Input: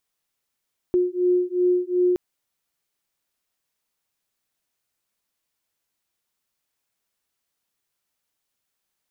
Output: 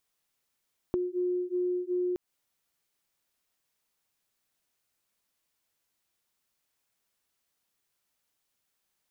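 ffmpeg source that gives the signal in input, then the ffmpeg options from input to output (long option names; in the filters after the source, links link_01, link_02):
-f lavfi -i "aevalsrc='0.0891*(sin(2*PI*358*t)+sin(2*PI*360.7*t))':duration=1.22:sample_rate=44100"
-af "acompressor=threshold=-28dB:ratio=10"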